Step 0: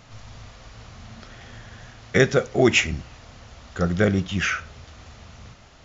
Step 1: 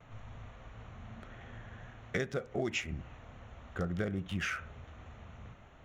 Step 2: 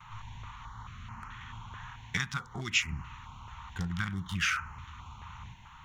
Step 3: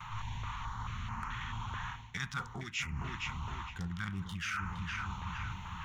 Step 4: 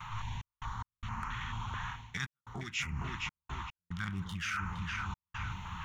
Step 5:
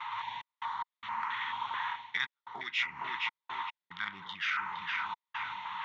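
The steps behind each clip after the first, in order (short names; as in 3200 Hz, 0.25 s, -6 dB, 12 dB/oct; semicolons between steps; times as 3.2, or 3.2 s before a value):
Wiener smoothing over 9 samples; gate with hold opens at -43 dBFS; compressor 6:1, threshold -26 dBFS, peak gain reduction 14 dB; gain -5.5 dB
EQ curve 160 Hz 0 dB, 620 Hz -22 dB, 930 Hz +14 dB, 1700 Hz +3 dB, 3500 Hz +8 dB, 5600 Hz +7 dB, 10000 Hz +5 dB; stepped notch 4.6 Hz 310–3600 Hz; gain +3 dB
darkening echo 0.464 s, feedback 49%, low-pass 2700 Hz, level -11 dB; reverse; compressor 12:1, threshold -41 dBFS, peak gain reduction 19 dB; reverse; gain +6.5 dB
step gate "xx.x.xxxxxx.xx" 73 bpm -60 dB; gain +1 dB
speaker cabinet 460–4600 Hz, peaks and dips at 940 Hz +10 dB, 2000 Hz +9 dB, 3600 Hz +8 dB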